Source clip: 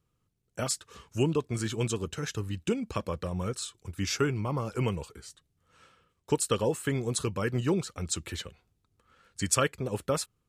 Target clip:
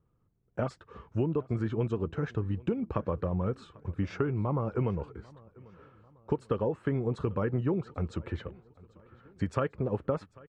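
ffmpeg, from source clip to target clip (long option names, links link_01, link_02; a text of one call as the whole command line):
ffmpeg -i in.wav -af "lowpass=1200,acompressor=threshold=-30dB:ratio=6,aecho=1:1:794|1588|2382:0.0668|0.0307|0.0141,volume=4.5dB" out.wav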